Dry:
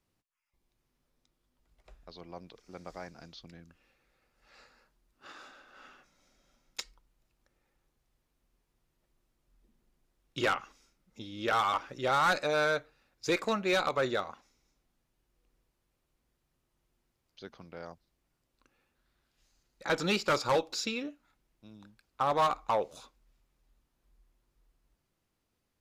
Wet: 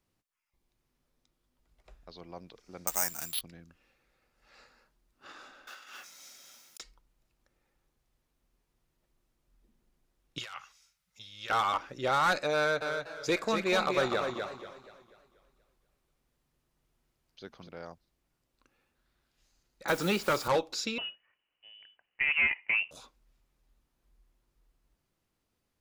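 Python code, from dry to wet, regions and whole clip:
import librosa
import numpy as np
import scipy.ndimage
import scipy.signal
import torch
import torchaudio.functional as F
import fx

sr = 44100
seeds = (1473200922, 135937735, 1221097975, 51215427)

y = fx.chain(x, sr, fx.band_shelf(hz=1900.0, db=9.5, octaves=2.8),
    fx.resample_bad(factor=6, down='none', up='zero_stuff'), at=(2.87, 3.41))
y = fx.chain(y, sr, fx.tilt_eq(slope=4.5),
    fx.over_compress(threshold_db=-55.0, ratio=-0.5),
    fx.highpass(hz=60.0, slope=12), at=(5.67, 6.8))
y = fx.chain(y, sr, fx.highpass(hz=71.0, slope=12),
    fx.tone_stack(knobs='10-0-10'),
    fx.over_compress(threshold_db=-42.0, ratio=-1.0), at=(10.38, 11.5))
y = fx.chain(y, sr, fx.echo_feedback(ms=247, feedback_pct=17, wet_db=-6),
    fx.echo_warbled(ms=241, feedback_pct=45, rate_hz=2.8, cents=144, wet_db=-13), at=(12.57, 17.69))
y = fx.chain(y, sr, fx.peak_eq(hz=4600.0, db=-4.0, octaves=1.4),
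    fx.quant_dither(seeds[0], bits=8, dither='triangular'),
    fx.band_squash(depth_pct=70), at=(19.88, 20.48))
y = fx.chain(y, sr, fx.highpass(hz=190.0, slope=24),
    fx.freq_invert(carrier_hz=3200), at=(20.98, 22.91))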